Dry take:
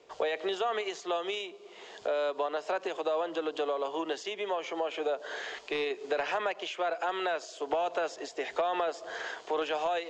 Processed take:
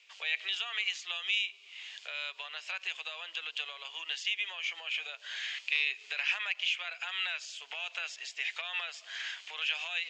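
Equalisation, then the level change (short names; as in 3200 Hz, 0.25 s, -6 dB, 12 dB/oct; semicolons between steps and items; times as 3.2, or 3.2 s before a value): resonant high-pass 2500 Hz, resonance Q 3.2; 0.0 dB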